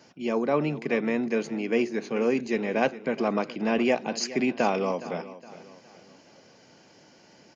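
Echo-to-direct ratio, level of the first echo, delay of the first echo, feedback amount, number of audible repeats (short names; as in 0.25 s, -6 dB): -15.5 dB, -16.0 dB, 0.415 s, 40%, 3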